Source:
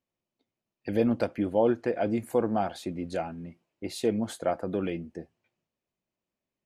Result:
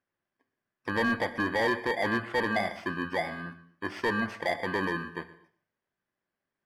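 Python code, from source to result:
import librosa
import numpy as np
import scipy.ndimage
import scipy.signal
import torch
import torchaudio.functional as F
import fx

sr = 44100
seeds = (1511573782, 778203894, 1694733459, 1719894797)

p1 = fx.bit_reversed(x, sr, seeds[0], block=32)
p2 = fx.fold_sine(p1, sr, drive_db=11, ceiling_db=-12.0)
p3 = p1 + (p2 * librosa.db_to_amplitude(-11.0))
p4 = fx.peak_eq(p3, sr, hz=1500.0, db=8.5, octaves=0.49)
p5 = fx.spec_gate(p4, sr, threshold_db=-30, keep='strong')
p6 = scipy.signal.sosfilt(scipy.signal.butter(2, 2400.0, 'lowpass', fs=sr, output='sos'), p5)
p7 = fx.low_shelf(p6, sr, hz=490.0, db=-11.0)
p8 = p7 + fx.echo_single(p7, sr, ms=123, db=-19.0, dry=0)
p9 = fx.rev_gated(p8, sr, seeds[1], gate_ms=300, shape='falling', drr_db=12.0)
y = np.clip(10.0 ** (19.0 / 20.0) * p9, -1.0, 1.0) / 10.0 ** (19.0 / 20.0)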